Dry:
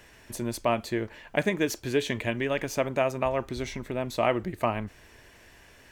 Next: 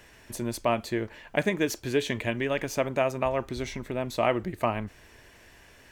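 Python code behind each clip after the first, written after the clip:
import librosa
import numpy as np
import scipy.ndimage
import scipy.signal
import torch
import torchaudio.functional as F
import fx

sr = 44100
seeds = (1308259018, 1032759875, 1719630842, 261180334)

y = x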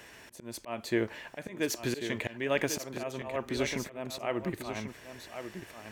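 y = fx.highpass(x, sr, hz=170.0, slope=6)
y = fx.auto_swell(y, sr, attack_ms=361.0)
y = y + 10.0 ** (-9.0 / 20.0) * np.pad(y, (int(1092 * sr / 1000.0), 0))[:len(y)]
y = y * 10.0 ** (3.0 / 20.0)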